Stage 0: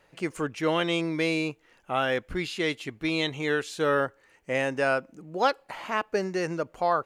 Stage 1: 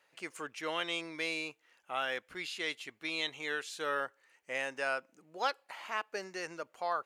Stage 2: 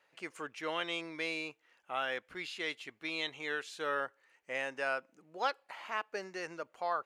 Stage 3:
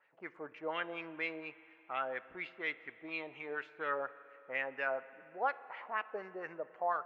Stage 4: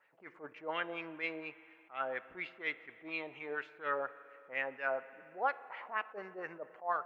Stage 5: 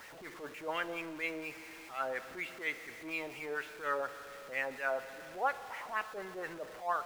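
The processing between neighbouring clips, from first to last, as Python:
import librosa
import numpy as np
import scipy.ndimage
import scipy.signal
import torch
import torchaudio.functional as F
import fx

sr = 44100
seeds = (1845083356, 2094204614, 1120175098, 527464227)

y1 = fx.highpass(x, sr, hz=1200.0, slope=6)
y1 = F.gain(torch.from_numpy(y1), -4.5).numpy()
y2 = fx.high_shelf(y1, sr, hz=5300.0, db=-8.0)
y3 = fx.filter_lfo_lowpass(y2, sr, shape='sine', hz=4.2, low_hz=650.0, high_hz=2400.0, q=2.2)
y3 = fx.rev_spring(y3, sr, rt60_s=2.9, pass_ms=(34, 54), chirp_ms=35, drr_db=16.0)
y3 = F.gain(torch.from_numpy(y3), -4.0).numpy()
y4 = fx.attack_slew(y3, sr, db_per_s=240.0)
y4 = F.gain(torch.from_numpy(y4), 1.0).numpy()
y5 = y4 + 0.5 * 10.0 ** (-46.5 / 20.0) * np.sign(y4)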